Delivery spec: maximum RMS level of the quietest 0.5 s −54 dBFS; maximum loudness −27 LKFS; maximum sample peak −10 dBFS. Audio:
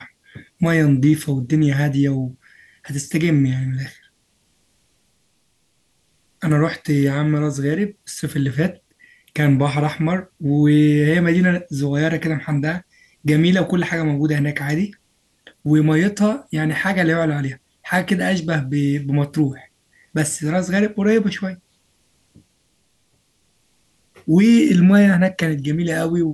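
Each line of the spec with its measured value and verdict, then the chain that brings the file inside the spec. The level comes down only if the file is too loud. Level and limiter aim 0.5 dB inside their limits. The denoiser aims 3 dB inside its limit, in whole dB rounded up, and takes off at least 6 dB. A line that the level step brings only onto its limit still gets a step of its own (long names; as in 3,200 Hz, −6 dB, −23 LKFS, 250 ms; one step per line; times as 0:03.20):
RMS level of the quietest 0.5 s −64 dBFS: in spec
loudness −18.5 LKFS: out of spec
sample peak −5.5 dBFS: out of spec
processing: level −9 dB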